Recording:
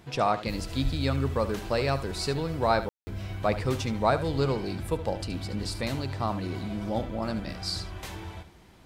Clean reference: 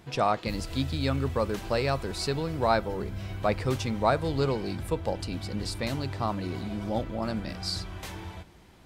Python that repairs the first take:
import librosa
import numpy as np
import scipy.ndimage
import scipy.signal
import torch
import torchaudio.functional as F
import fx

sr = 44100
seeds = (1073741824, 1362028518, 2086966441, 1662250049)

y = fx.highpass(x, sr, hz=140.0, slope=24, at=(0.83, 0.95), fade=0.02)
y = fx.fix_ambience(y, sr, seeds[0], print_start_s=8.34, print_end_s=8.84, start_s=2.89, end_s=3.07)
y = fx.fix_echo_inverse(y, sr, delay_ms=73, level_db=-13.0)